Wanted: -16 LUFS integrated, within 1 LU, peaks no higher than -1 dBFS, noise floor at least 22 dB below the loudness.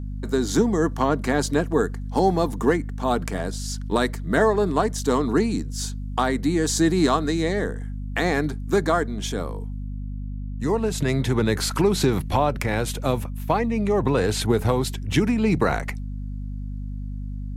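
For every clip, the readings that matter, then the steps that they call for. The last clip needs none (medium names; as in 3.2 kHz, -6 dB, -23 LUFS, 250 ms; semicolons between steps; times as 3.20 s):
hum 50 Hz; highest harmonic 250 Hz; hum level -28 dBFS; loudness -23.0 LUFS; peak level -6.5 dBFS; loudness target -16.0 LUFS
-> de-hum 50 Hz, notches 5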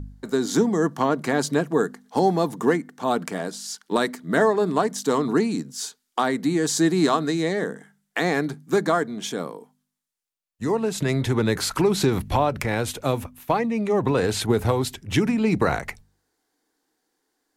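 hum not found; loudness -23.5 LUFS; peak level -7.0 dBFS; loudness target -16.0 LUFS
-> trim +7.5 dB; peak limiter -1 dBFS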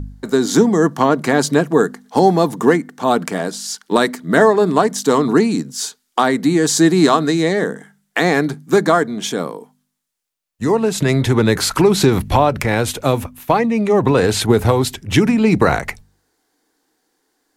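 loudness -16.0 LUFS; peak level -1.0 dBFS; noise floor -70 dBFS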